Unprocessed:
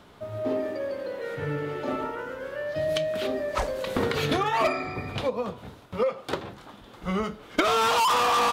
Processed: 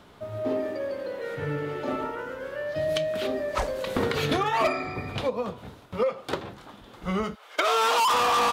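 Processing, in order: 7.34–8.12 HPF 760 Hz -> 180 Hz 24 dB/oct

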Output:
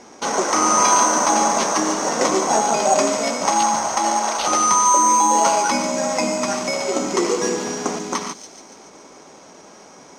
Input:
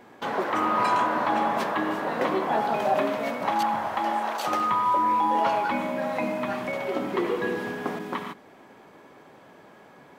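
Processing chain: careless resampling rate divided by 6×, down none, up hold; synth low-pass 6200 Hz, resonance Q 2.9; bell 120 Hz -9.5 dB 0.57 oct; notch 1700 Hz, Q 9.2; thin delay 0.142 s, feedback 60%, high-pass 4400 Hz, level -7 dB; gain +6.5 dB

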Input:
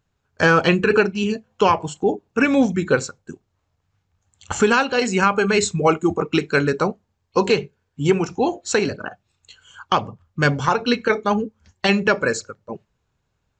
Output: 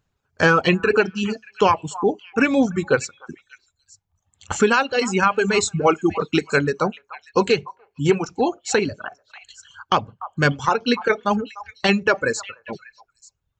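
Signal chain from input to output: delay with a stepping band-pass 0.295 s, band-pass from 960 Hz, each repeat 1.4 oct, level -11 dB; reverb removal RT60 1.1 s

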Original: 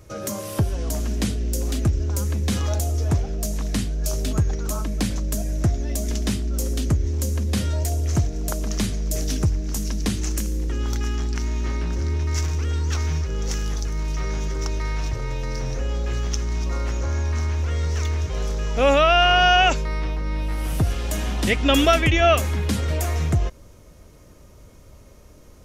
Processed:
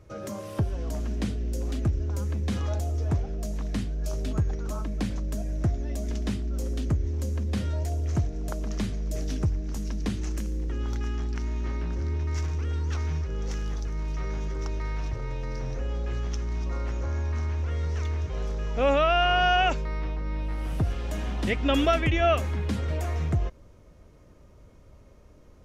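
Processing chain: LPF 2400 Hz 6 dB/oct; gain -5 dB

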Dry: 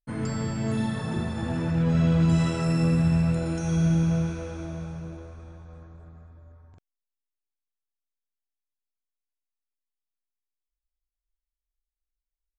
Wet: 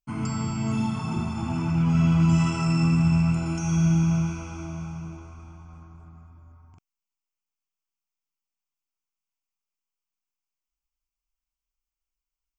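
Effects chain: low shelf 100 Hz -8.5 dB; fixed phaser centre 2600 Hz, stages 8; gain +5 dB

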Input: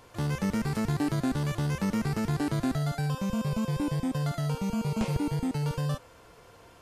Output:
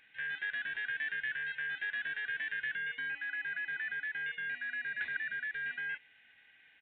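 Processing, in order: four-band scrambler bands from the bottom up 4123; downsampling 8000 Hz; gain -9 dB

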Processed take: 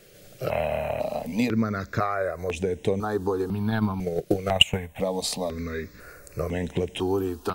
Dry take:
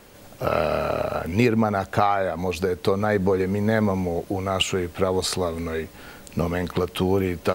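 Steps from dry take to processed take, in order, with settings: 3.71–4.96 transient shaper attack +12 dB, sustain -6 dB; step phaser 2 Hz 250–4500 Hz; gain -1.5 dB

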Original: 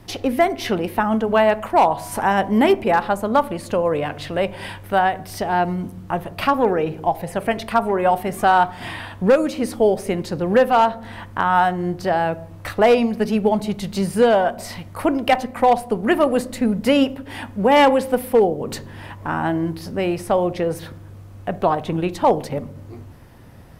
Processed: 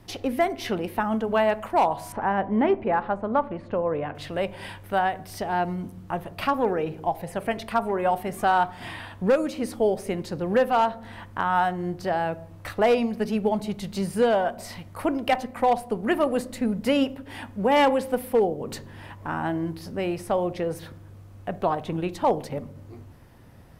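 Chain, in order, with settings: 2.12–4.15 LPF 1900 Hz 12 dB/oct; gain -6 dB

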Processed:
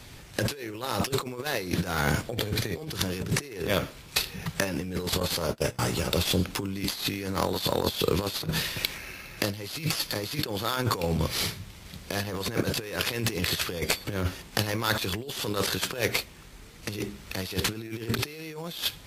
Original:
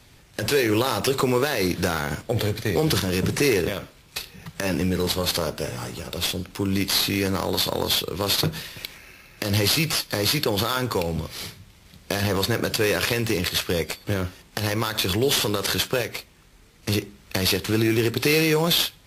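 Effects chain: 5.2–5.79 gate -27 dBFS, range -27 dB; negative-ratio compressor -28 dBFS, ratio -0.5

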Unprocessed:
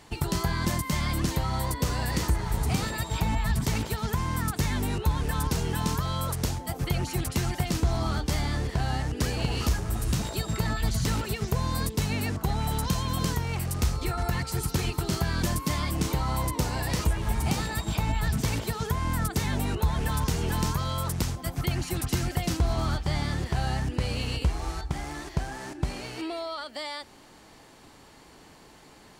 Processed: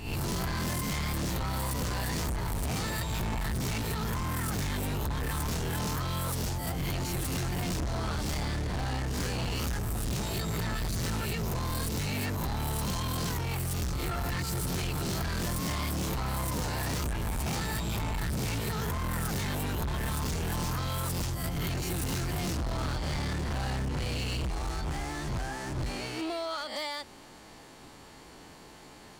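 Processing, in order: spectral swells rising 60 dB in 0.47 s; overloaded stage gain 29.5 dB

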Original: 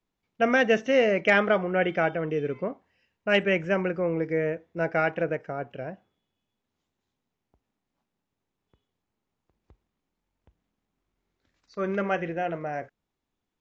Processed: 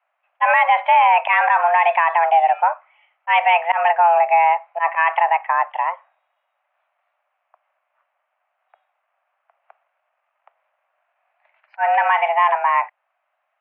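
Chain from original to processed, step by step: auto swell 0.111 s; mistuned SSB +340 Hz 310–2300 Hz; maximiser +21 dB; gain -5.5 dB

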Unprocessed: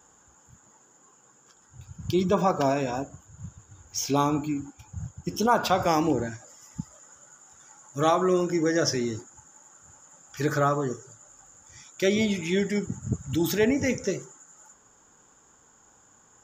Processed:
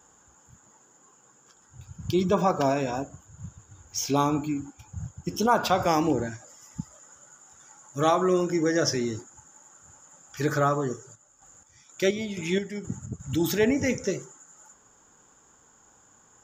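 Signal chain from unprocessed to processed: 10.94–13.2 chopper 2.1 Hz, depth 60%, duty 45%

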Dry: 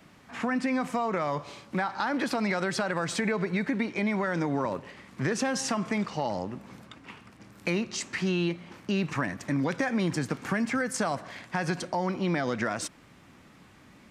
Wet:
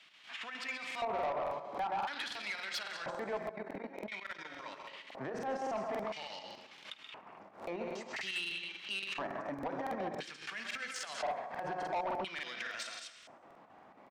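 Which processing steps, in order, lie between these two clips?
notches 60/120/180/240/300/360/420/480/540 Hz; tapped delay 49/52/129/204 ms -15.5/-18/-9/-10 dB; chopper 7.3 Hz, depth 60%, duty 65%; digital reverb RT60 1.2 s, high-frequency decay 1×, pre-delay 80 ms, DRR 12.5 dB; limiter -22.5 dBFS, peak gain reduction 9 dB; 3.49–4.45 level quantiser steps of 16 dB; LFO band-pass square 0.49 Hz 730–3200 Hz; soft clip -37 dBFS, distortion -12 dB; 9.14–10.61 expander -48 dBFS; crackling interface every 0.28 s, samples 2048, repeat, from 0.86; backwards sustainer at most 140 dB/s; gain +6.5 dB

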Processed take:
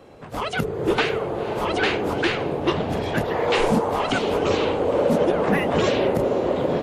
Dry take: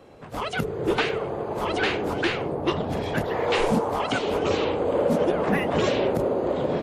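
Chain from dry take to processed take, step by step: diffused feedback echo 0.505 s, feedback 48%, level -15 dB; gain +2.5 dB

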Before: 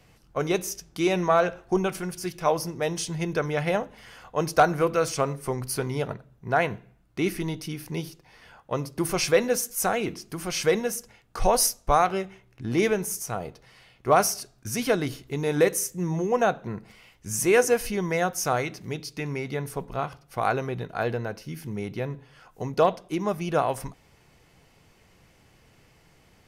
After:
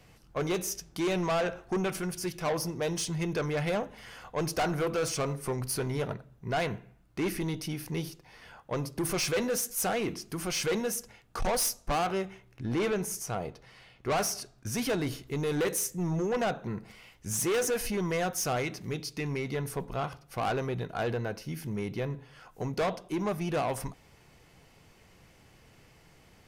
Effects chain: 12.62–14.76 high shelf 7600 Hz -7 dB; soft clip -25 dBFS, distortion -6 dB

